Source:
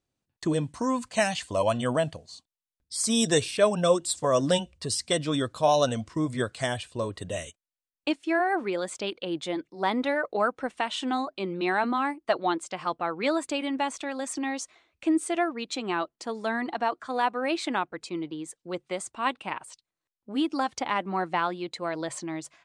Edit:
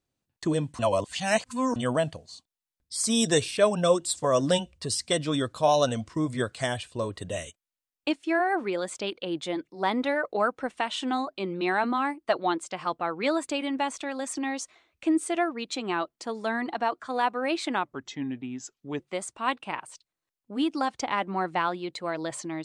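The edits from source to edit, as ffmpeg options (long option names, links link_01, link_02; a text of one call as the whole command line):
ffmpeg -i in.wav -filter_complex "[0:a]asplit=5[link_01][link_02][link_03][link_04][link_05];[link_01]atrim=end=0.792[link_06];[link_02]atrim=start=0.788:end=1.762,asetpts=PTS-STARTPTS,areverse[link_07];[link_03]atrim=start=1.758:end=17.854[link_08];[link_04]atrim=start=17.85:end=18.78,asetpts=PTS-STARTPTS,asetrate=35721,aresample=44100,atrim=end_sample=50633,asetpts=PTS-STARTPTS[link_09];[link_05]atrim=start=18.776[link_10];[link_06][link_07]acrossfade=duration=0.004:curve1=hsin:curve2=hsin[link_11];[link_11][link_08]acrossfade=duration=0.004:curve1=hsin:curve2=hsin[link_12];[link_12][link_09]acrossfade=duration=0.004:curve1=hsin:curve2=hsin[link_13];[link_13][link_10]acrossfade=duration=0.004:curve1=hsin:curve2=hsin" out.wav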